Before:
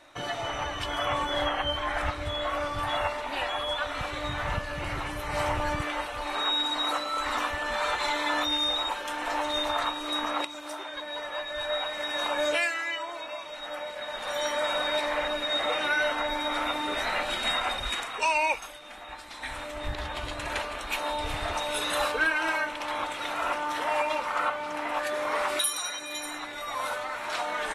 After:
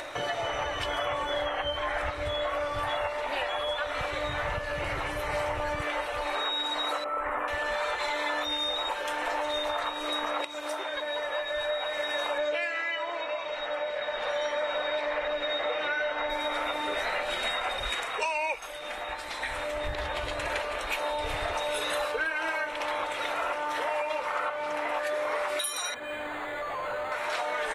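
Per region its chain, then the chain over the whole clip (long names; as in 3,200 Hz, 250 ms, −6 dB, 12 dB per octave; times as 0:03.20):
0:07.04–0:07.48: Butterworth band-reject 4,800 Hz, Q 0.64 + high-shelf EQ 4,000 Hz −12 dB
0:12.38–0:16.30: low-pass filter 4,900 Hz + echo with a time of its own for lows and highs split 1,900 Hz, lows 97 ms, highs 133 ms, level −15 dB
0:25.94–0:27.12: hard clipping −36 dBFS + high-frequency loss of the air 160 metres + linearly interpolated sample-rate reduction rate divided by 8×
whole clip: upward compression, threshold −32 dBFS; graphic EQ with 10 bands 250 Hz −5 dB, 500 Hz +8 dB, 2,000 Hz +4 dB; downward compressor, threshold −27 dBFS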